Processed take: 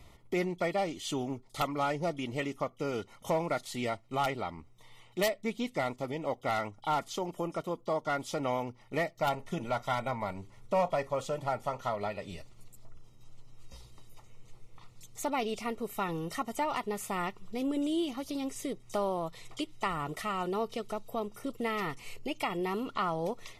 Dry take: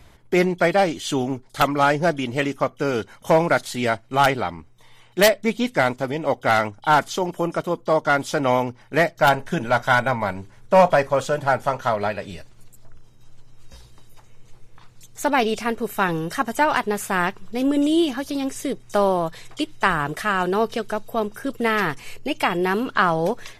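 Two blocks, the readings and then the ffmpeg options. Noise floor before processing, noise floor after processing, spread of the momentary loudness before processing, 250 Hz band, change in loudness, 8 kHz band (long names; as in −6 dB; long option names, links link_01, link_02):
−50 dBFS, −58 dBFS, 9 LU, −11.5 dB, −12.5 dB, −10.5 dB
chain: -af "asuperstop=centerf=1600:order=12:qfactor=4.7,acompressor=threshold=-35dB:ratio=1.5,volume=-5.5dB"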